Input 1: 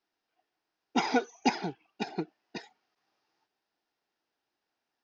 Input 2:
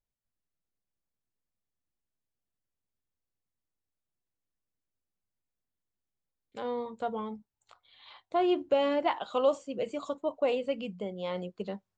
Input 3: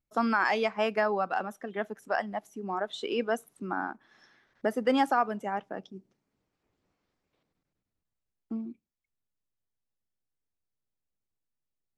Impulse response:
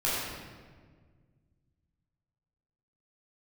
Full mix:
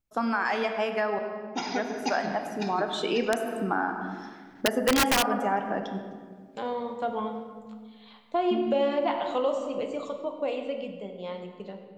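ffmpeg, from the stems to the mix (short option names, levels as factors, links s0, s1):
-filter_complex "[0:a]bass=f=250:g=-2,treble=f=4000:g=6,adelay=600,volume=0.422,asplit=2[s0][s1];[s1]volume=0.251[s2];[1:a]highpass=110,agate=range=0.501:threshold=0.00355:ratio=16:detection=peak,volume=0.562,asplit=2[s3][s4];[s4]volume=0.224[s5];[2:a]volume=1,asplit=3[s6][s7][s8];[s6]atrim=end=1.19,asetpts=PTS-STARTPTS,afade=t=out:st=1.186:d=0.004:c=hsin[s9];[s7]atrim=start=1.19:end=1.69,asetpts=PTS-STARTPTS,volume=0[s10];[s8]atrim=start=1.69,asetpts=PTS-STARTPTS,afade=t=in:d=0.004:c=hsin[s11];[s9][s10][s11]concat=n=3:v=0:a=1,asplit=2[s12][s13];[s13]volume=0.178[s14];[3:a]atrim=start_sample=2205[s15];[s2][s5][s14]amix=inputs=3:normalize=0[s16];[s16][s15]afir=irnorm=-1:irlink=0[s17];[s0][s3][s12][s17]amix=inputs=4:normalize=0,dynaudnorm=f=310:g=17:m=2.51,aeval=exprs='(mod(2.66*val(0)+1,2)-1)/2.66':c=same,acompressor=threshold=0.0562:ratio=2"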